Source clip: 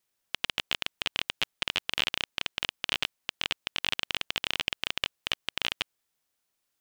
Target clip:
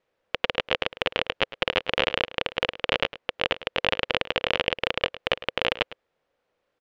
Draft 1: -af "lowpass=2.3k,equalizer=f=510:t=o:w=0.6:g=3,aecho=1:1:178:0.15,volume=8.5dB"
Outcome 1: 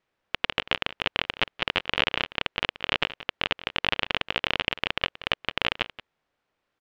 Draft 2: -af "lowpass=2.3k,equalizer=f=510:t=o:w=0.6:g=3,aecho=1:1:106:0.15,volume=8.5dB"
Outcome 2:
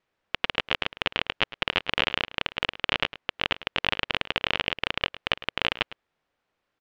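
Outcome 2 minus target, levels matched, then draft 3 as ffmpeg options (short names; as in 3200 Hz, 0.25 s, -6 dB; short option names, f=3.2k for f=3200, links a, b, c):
500 Hz band -6.5 dB
-af "lowpass=2.3k,equalizer=f=510:t=o:w=0.6:g=13.5,aecho=1:1:106:0.15,volume=8.5dB"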